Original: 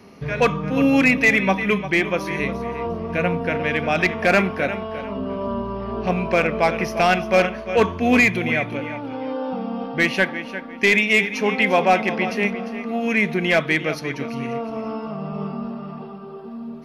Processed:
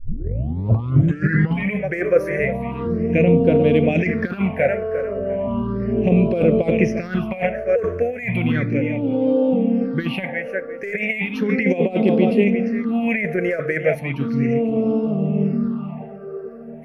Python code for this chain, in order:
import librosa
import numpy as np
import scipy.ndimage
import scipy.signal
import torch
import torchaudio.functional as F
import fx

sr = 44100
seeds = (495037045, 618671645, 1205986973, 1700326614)

y = fx.tape_start_head(x, sr, length_s=1.75)
y = fx.over_compress(y, sr, threshold_db=-20.0, ratio=-0.5)
y = fx.phaser_stages(y, sr, stages=6, low_hz=230.0, high_hz=1800.0, hz=0.35, feedback_pct=30)
y = fx.graphic_eq(y, sr, hz=(125, 250, 500, 1000, 2000, 4000, 8000), db=(9, 7, 11, -5, 6, -5, -4))
y = y * librosa.db_to_amplitude(-3.0)